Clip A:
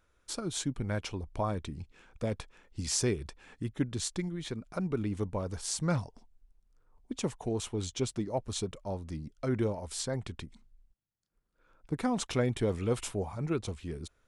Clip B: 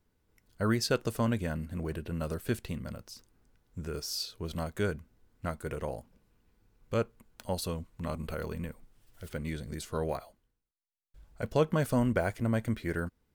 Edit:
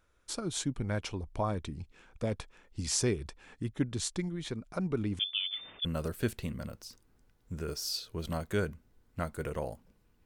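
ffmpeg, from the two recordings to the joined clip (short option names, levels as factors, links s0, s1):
-filter_complex "[0:a]asettb=1/sr,asplit=3[s0][s1][s2];[s0]atrim=end=5.194[s3];[s1]atrim=start=5.19:end=5.85,asetpts=PTS-STARTPTS,afade=t=in:d=0.004:c=qsin,afade=t=out:st=0.656:d=0.004:c=qsin,lowpass=f=3100:t=q:w=0.5098,lowpass=f=3100:t=q:w=0.6013,lowpass=f=3100:t=q:w=0.9,lowpass=f=3100:t=q:w=2.563,afreqshift=-3600[s4];[s2]atrim=start=5.846[s5];[s3][s4]acrossfade=d=0.004:c1=hsin:c2=qsin[s6];[s6][s5]acrossfade=d=0.004:c1=qsin:c2=hsin,apad=whole_dur=10.25,atrim=end=10.25,atrim=end=5.852[s7];[1:a]atrim=start=2.108:end=6.51[s8];[s7][s8]acrossfade=d=0.004:c1=hsin:c2=hsin"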